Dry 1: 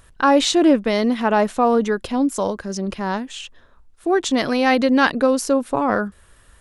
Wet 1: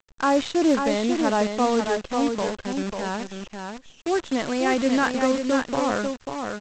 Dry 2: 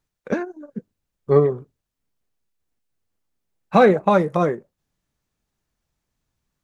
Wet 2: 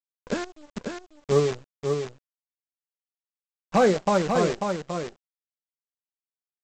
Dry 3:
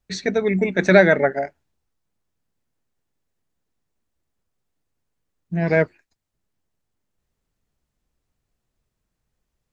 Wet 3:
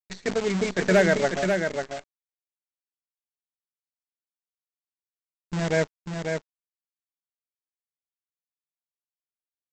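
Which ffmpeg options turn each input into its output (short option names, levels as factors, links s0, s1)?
-filter_complex "[0:a]highshelf=f=2900:g=-3,agate=range=0.0224:threshold=0.00398:ratio=3:detection=peak,acrossover=split=3600[s0][s1];[s1]acompressor=threshold=0.00794:ratio=4:attack=1:release=60[s2];[s0][s2]amix=inputs=2:normalize=0,aresample=16000,acrusher=bits=5:dc=4:mix=0:aa=0.000001,aresample=44100,volume=2,asoftclip=hard,volume=0.501,asplit=2[s3][s4];[s4]aecho=0:1:542:0.531[s5];[s3][s5]amix=inputs=2:normalize=0,volume=0.531"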